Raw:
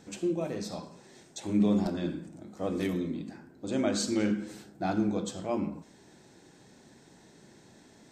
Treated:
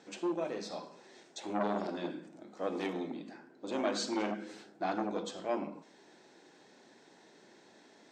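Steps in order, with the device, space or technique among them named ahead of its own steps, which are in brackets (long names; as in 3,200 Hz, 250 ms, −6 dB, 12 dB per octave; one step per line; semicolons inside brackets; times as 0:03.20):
public-address speaker with an overloaded transformer (saturating transformer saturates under 840 Hz; band-pass filter 340–5,200 Hz)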